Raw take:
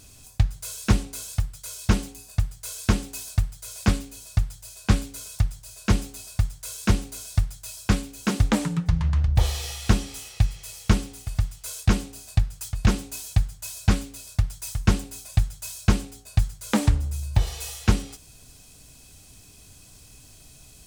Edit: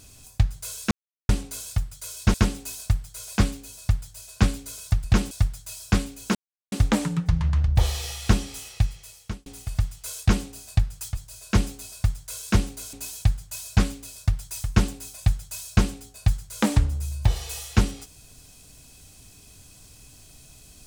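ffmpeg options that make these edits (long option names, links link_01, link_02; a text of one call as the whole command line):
ffmpeg -i in.wav -filter_complex "[0:a]asplit=9[link_01][link_02][link_03][link_04][link_05][link_06][link_07][link_08][link_09];[link_01]atrim=end=0.91,asetpts=PTS-STARTPTS,afade=type=out:start_time=0.906:duration=0.004:curve=hsin,apad=pad_dur=0.38[link_10];[link_02]atrim=start=0.91:end=1.962,asetpts=PTS-STARTPTS,afade=type=in:duration=0.004:curve=hsin[link_11];[link_03]atrim=start=2.818:end=5.522[link_12];[link_04]atrim=start=12.768:end=13.042[link_13];[link_05]atrim=start=7.278:end=8.32,asetpts=PTS-STARTPTS,afade=type=out:start_time=1.038:duration=0.004:curve=hsin,apad=pad_dur=0.37[link_14];[link_06]atrim=start=8.32:end=11.06,asetpts=PTS-STARTPTS,afade=type=in:duration=0.004:curve=hsin,afade=type=out:start_time=1.99:duration=0.75[link_15];[link_07]atrim=start=11.06:end=12.772,asetpts=PTS-STARTPTS,afade=type=in:duration=0.004:curve=hsin[link_16];[link_08]atrim=start=5.518:end=7.282[link_17];[link_09]atrim=start=13.038[link_18];[link_10][link_11]concat=n=2:v=0:a=1[link_19];[link_19][link_12]acrossfade=duration=0.004:curve1=hsin:curve2=hsin[link_20];[link_20][link_13]acrossfade=duration=0.004:curve1=hsin:curve2=hsin[link_21];[link_14][link_15][link_16]concat=n=3:v=0:a=1[link_22];[link_21][link_22]acrossfade=duration=0.004:curve1=hsin:curve2=hsin[link_23];[link_23][link_17]acrossfade=duration=0.004:curve1=hsin:curve2=hsin[link_24];[link_24][link_18]acrossfade=duration=0.004:curve1=hsin:curve2=hsin" out.wav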